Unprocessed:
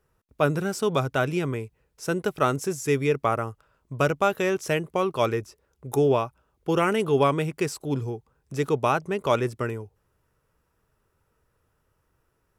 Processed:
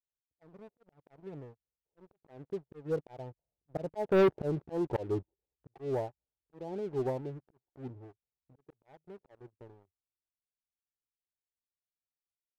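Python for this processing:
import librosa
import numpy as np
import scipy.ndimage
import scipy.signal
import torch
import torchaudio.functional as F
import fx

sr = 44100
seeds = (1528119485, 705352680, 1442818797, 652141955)

y = fx.doppler_pass(x, sr, speed_mps=21, closest_m=6.6, pass_at_s=4.36)
y = fx.peak_eq(y, sr, hz=220.0, db=-7.0, octaves=0.21)
y = fx.vibrato(y, sr, rate_hz=0.36, depth_cents=80.0)
y = fx.auto_swell(y, sr, attack_ms=258.0)
y = scipy.signal.sosfilt(scipy.signal.butter(16, 900.0, 'lowpass', fs=sr, output='sos'), y)
y = fx.leveller(y, sr, passes=3)
y = fx.upward_expand(y, sr, threshold_db=-39.0, expansion=1.5)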